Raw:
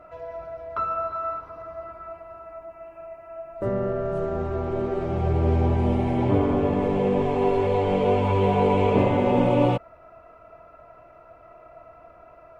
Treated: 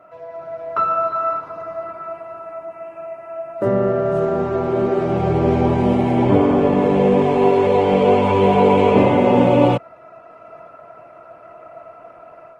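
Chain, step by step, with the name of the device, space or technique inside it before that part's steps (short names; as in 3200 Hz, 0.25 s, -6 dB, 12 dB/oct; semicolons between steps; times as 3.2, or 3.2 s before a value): video call (HPF 120 Hz 24 dB/oct; AGC gain up to 7.5 dB; gain +1 dB; Opus 20 kbps 48000 Hz)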